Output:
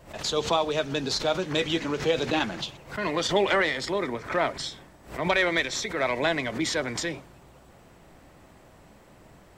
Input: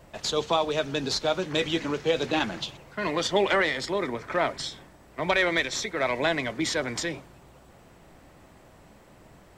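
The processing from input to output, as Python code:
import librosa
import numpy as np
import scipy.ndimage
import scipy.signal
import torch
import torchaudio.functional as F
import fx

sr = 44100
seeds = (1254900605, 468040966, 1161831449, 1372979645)

y = fx.pre_swell(x, sr, db_per_s=150.0)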